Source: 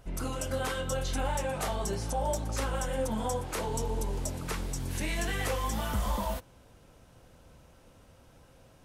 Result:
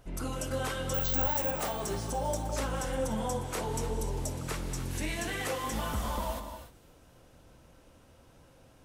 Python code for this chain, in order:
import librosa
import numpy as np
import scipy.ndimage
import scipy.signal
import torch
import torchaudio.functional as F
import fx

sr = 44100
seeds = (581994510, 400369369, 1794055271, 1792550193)

y = fx.peak_eq(x, sr, hz=310.0, db=2.5, octaves=0.39)
y = fx.hum_notches(y, sr, base_hz=50, count=4)
y = fx.vibrato(y, sr, rate_hz=13.0, depth_cents=7.9)
y = fx.resample_bad(y, sr, factor=2, down='filtered', up='zero_stuff', at=(0.94, 1.51))
y = fx.echo_wet_highpass(y, sr, ms=264, feedback_pct=57, hz=3700.0, wet_db=-22.0)
y = fx.rev_gated(y, sr, seeds[0], gate_ms=320, shape='rising', drr_db=7.5)
y = y * 10.0 ** (-1.5 / 20.0)